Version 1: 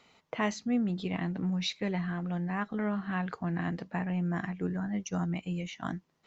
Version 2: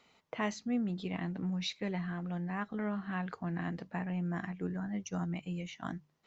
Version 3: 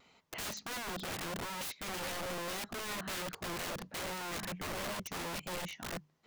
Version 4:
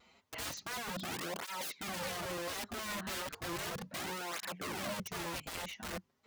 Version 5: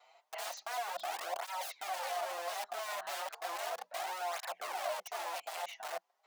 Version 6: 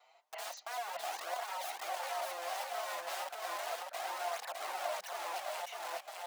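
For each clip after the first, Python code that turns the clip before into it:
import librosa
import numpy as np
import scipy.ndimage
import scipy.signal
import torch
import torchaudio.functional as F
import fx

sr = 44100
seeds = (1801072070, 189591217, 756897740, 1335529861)

y1 = fx.hum_notches(x, sr, base_hz=50, count=3)
y1 = y1 * 10.0 ** (-4.0 / 20.0)
y2 = fx.vibrato(y1, sr, rate_hz=1.5, depth_cents=32.0)
y2 = (np.mod(10.0 ** (37.0 / 20.0) * y2 + 1.0, 2.0) - 1.0) / 10.0 ** (37.0 / 20.0)
y2 = y2 * 10.0 ** (2.0 / 20.0)
y3 = fx.flanger_cancel(y2, sr, hz=0.34, depth_ms=7.4)
y3 = y3 * 10.0 ** (2.5 / 20.0)
y4 = fx.ladder_highpass(y3, sr, hz=650.0, resonance_pct=70)
y4 = y4 * 10.0 ** (9.0 / 20.0)
y5 = fx.echo_feedback(y4, sr, ms=606, feedback_pct=18, wet_db=-3)
y5 = y5 * 10.0 ** (-2.0 / 20.0)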